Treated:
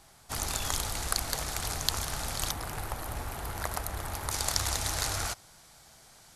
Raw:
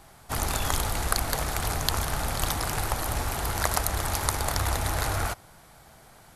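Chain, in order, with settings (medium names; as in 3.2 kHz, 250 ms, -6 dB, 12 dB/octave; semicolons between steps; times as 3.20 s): peaking EQ 5.9 kHz +8 dB 2 oct, from 2.51 s -3 dB, from 4.31 s +12.5 dB; trim -7.5 dB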